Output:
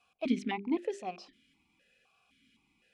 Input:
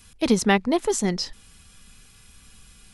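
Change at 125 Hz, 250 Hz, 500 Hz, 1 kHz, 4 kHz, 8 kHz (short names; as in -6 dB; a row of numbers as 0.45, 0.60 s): -18.5, -10.5, -13.5, -12.5, -17.5, -27.0 dB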